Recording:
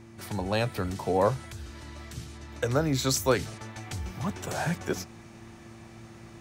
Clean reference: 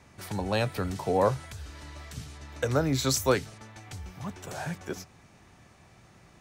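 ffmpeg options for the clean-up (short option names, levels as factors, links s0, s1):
-af "bandreject=f=113.2:t=h:w=4,bandreject=f=226.4:t=h:w=4,bandreject=f=339.6:t=h:w=4,asetnsamples=n=441:p=0,asendcmd='3.39 volume volume -5.5dB',volume=1"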